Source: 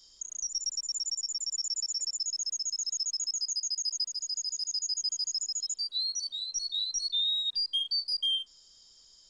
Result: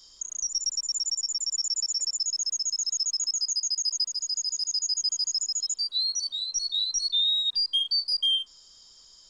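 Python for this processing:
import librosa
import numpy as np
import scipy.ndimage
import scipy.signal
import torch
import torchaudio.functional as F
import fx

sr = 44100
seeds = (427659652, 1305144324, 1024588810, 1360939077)

y = fx.peak_eq(x, sr, hz=1100.0, db=5.0, octaves=0.85)
y = F.gain(torch.from_numpy(y), 4.5).numpy()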